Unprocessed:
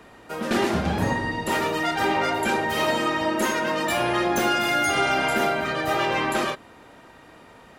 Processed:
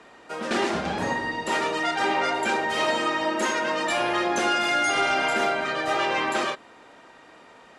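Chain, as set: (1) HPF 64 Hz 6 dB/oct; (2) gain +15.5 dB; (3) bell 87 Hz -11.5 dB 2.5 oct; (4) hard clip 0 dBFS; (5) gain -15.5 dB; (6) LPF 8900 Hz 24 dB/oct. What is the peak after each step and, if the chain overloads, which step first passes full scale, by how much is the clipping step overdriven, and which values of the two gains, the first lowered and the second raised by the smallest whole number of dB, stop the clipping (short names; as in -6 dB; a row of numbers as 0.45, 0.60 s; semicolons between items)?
-11.0, +4.5, +4.0, 0.0, -15.5, -14.5 dBFS; step 2, 4.0 dB; step 2 +11.5 dB, step 5 -11.5 dB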